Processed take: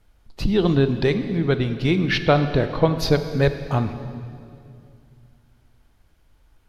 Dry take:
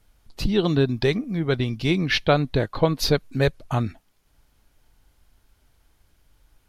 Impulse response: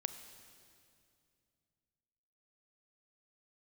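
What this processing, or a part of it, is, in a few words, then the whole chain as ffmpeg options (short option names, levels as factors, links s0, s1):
swimming-pool hall: -filter_complex "[1:a]atrim=start_sample=2205[s0];[0:a][s0]afir=irnorm=-1:irlink=0,highshelf=f=3900:g=-8,volume=1.41"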